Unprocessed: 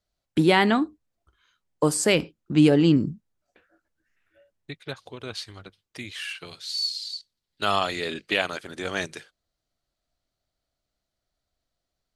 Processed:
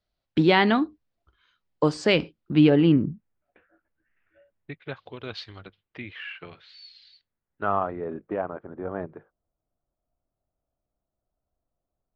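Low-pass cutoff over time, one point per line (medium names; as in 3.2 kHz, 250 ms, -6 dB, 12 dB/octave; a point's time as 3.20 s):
low-pass 24 dB/octave
2.36 s 4.8 kHz
3.01 s 2.6 kHz
4.72 s 2.6 kHz
5.41 s 4.3 kHz
6.16 s 2.5 kHz
7.10 s 2.5 kHz
8.00 s 1.1 kHz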